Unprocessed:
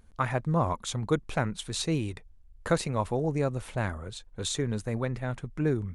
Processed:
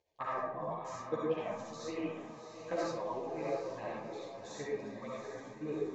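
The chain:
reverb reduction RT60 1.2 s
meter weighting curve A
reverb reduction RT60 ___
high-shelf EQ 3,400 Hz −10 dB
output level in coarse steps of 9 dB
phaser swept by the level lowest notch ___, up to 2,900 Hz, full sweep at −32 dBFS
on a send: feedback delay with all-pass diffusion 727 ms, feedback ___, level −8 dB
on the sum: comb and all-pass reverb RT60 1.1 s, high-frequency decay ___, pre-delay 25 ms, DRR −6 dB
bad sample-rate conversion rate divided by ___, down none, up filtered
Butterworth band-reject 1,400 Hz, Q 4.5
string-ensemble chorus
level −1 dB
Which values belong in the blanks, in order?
0.64 s, 230 Hz, 51%, 0.5×, 3×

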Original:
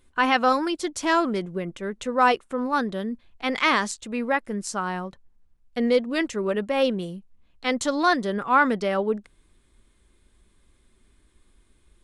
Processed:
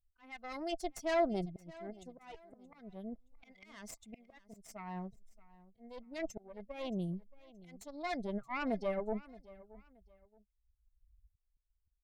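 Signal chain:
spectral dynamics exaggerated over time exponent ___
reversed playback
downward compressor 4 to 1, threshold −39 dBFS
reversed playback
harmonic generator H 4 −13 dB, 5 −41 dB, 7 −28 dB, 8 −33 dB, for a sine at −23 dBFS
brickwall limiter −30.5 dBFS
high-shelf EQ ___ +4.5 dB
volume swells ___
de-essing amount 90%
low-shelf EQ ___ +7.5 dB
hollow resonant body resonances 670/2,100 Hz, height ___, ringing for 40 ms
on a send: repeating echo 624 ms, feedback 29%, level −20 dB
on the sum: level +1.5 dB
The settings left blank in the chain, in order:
2, 2,500 Hz, 755 ms, 160 Hz, 14 dB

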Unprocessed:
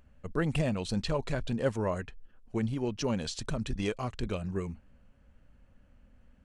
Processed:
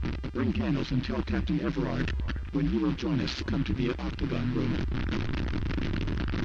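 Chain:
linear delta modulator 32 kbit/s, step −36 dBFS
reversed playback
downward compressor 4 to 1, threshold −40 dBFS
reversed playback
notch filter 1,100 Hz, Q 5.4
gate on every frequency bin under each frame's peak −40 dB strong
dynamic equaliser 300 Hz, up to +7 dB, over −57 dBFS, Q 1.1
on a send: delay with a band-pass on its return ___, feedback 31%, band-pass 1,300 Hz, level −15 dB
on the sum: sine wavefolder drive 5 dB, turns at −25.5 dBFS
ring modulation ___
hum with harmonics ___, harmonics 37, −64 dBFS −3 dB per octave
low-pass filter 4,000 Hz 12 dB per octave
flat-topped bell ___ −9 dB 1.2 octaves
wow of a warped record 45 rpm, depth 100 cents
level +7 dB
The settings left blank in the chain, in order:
370 ms, 64 Hz, 400 Hz, 590 Hz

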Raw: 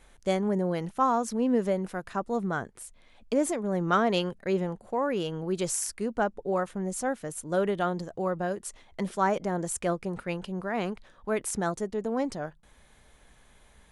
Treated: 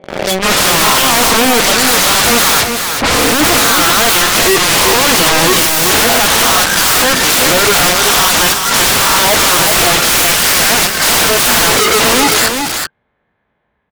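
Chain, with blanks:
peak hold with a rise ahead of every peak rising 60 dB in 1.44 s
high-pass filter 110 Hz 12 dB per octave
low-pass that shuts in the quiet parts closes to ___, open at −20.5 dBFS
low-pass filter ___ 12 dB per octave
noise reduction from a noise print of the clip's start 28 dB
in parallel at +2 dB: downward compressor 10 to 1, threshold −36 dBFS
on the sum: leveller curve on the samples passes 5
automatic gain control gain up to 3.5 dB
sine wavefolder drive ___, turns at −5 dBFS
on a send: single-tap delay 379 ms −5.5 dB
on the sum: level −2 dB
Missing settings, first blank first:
2,000 Hz, 3,600 Hz, 19 dB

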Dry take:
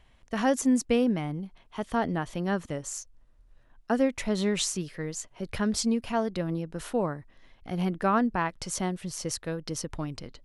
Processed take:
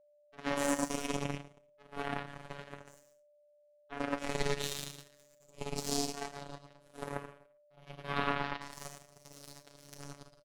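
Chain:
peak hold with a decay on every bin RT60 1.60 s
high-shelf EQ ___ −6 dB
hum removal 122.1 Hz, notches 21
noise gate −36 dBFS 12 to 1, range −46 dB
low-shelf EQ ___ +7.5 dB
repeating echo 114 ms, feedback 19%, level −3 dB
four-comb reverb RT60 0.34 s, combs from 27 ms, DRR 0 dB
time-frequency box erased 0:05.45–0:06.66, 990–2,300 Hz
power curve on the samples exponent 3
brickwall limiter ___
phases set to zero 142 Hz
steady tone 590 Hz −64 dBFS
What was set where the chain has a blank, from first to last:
8,600 Hz, 71 Hz, −14 dBFS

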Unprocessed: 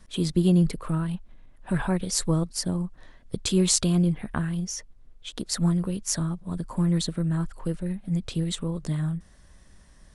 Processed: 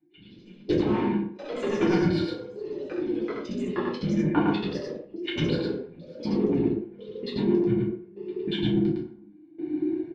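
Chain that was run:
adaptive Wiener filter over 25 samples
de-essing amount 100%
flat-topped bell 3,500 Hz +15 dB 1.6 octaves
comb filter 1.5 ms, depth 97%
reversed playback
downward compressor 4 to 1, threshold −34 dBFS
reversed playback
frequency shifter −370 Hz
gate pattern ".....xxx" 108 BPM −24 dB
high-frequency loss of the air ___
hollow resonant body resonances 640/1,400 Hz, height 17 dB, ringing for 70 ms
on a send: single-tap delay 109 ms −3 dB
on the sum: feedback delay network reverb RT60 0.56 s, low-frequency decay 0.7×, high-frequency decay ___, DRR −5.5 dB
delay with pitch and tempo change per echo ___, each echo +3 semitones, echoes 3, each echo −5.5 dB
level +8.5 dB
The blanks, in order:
470 metres, 0.65×, 104 ms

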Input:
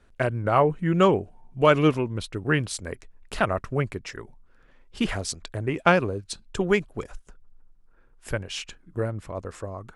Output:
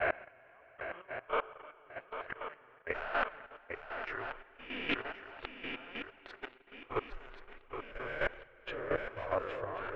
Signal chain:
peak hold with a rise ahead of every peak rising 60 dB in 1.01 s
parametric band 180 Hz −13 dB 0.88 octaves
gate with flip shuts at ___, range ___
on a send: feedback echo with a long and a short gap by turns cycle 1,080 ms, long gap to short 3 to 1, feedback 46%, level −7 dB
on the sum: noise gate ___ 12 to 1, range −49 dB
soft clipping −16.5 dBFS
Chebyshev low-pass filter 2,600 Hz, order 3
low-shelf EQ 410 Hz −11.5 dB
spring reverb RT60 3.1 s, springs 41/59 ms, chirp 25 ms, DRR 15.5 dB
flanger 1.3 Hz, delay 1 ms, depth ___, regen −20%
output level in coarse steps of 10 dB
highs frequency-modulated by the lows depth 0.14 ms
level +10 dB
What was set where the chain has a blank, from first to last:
−19 dBFS, −33 dB, −45 dBFS, 7.5 ms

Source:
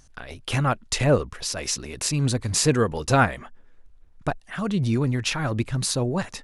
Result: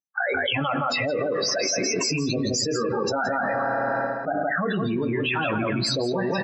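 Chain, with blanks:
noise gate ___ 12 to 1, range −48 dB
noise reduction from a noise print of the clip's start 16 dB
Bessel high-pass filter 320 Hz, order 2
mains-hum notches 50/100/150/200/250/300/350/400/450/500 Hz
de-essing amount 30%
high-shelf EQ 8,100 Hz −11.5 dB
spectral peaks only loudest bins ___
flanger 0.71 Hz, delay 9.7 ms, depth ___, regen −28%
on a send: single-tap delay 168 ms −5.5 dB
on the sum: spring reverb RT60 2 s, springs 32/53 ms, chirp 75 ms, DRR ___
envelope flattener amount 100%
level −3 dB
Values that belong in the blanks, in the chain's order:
−42 dBFS, 16, 2 ms, 15.5 dB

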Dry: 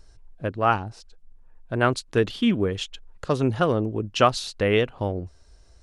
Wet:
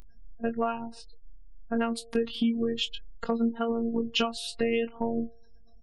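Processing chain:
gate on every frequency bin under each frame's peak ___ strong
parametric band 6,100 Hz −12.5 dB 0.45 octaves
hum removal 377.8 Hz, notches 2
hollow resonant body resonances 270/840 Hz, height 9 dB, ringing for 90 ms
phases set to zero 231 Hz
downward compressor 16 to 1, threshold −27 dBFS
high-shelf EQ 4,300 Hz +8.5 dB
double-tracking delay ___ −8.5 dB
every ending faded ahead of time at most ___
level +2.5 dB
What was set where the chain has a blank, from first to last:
−25 dB, 22 ms, 390 dB per second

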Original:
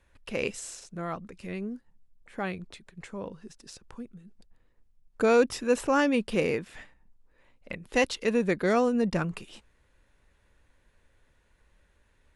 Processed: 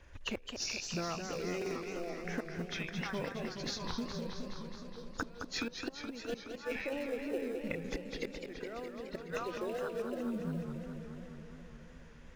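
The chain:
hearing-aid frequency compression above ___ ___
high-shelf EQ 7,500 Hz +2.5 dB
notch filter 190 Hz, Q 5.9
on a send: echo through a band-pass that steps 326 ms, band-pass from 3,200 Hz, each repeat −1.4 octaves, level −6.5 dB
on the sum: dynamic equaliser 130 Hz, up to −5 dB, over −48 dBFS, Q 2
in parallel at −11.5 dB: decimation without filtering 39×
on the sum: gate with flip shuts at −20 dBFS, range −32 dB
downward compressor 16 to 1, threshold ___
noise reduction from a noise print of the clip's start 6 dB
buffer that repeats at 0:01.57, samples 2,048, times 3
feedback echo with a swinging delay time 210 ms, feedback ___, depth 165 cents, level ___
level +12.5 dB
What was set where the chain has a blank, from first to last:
2,800 Hz, 1.5 to 1, −47 dBFS, 74%, −6.5 dB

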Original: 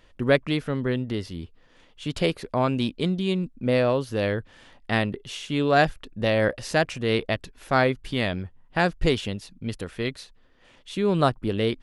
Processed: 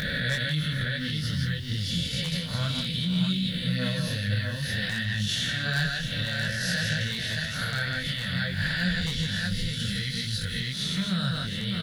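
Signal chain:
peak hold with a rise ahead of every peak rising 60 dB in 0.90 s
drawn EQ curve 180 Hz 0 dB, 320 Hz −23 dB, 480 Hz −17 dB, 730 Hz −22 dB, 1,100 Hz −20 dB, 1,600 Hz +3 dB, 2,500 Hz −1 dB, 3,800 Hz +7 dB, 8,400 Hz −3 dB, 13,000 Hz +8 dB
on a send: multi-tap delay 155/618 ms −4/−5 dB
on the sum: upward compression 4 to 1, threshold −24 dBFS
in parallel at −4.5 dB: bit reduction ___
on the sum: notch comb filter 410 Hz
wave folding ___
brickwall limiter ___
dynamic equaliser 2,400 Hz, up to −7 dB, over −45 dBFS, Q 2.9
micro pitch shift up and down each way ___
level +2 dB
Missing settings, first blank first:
8 bits, −8.5 dBFS, −16 dBFS, 20 cents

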